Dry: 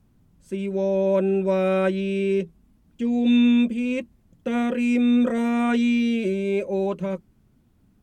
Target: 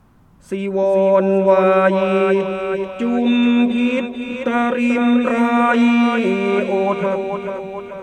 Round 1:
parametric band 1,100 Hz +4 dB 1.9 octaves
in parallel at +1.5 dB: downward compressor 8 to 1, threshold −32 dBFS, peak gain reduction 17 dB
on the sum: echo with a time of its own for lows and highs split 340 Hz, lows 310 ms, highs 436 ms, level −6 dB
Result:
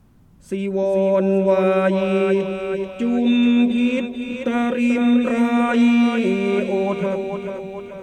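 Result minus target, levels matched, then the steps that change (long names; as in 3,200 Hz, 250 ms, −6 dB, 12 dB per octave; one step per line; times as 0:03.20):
1,000 Hz band −4.5 dB
change: parametric band 1,100 Hz +13 dB 1.9 octaves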